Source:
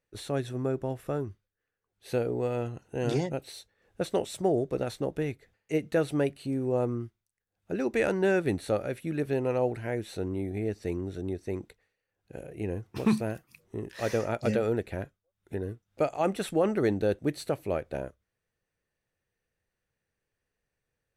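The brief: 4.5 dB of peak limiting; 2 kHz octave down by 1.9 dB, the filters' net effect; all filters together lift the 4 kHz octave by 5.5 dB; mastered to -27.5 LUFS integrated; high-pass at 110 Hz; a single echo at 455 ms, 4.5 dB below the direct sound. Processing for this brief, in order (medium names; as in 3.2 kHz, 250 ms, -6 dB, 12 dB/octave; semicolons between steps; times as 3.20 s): high-pass 110 Hz; peaking EQ 2 kHz -4.5 dB; peaking EQ 4 kHz +7.5 dB; peak limiter -18.5 dBFS; delay 455 ms -4.5 dB; trim +4 dB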